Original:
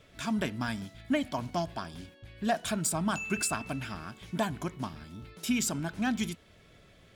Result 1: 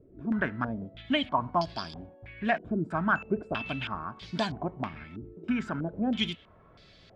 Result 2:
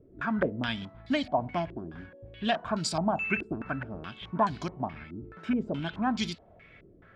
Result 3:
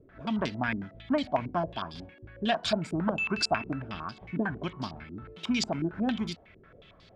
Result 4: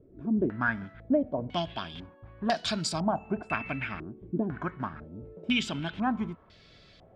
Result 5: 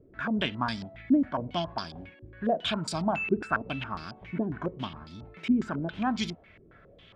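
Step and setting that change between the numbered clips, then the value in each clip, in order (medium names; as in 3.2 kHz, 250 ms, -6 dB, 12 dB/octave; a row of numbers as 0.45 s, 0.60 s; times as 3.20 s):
step-sequenced low-pass, rate: 3.1 Hz, 4.7 Hz, 11 Hz, 2 Hz, 7.3 Hz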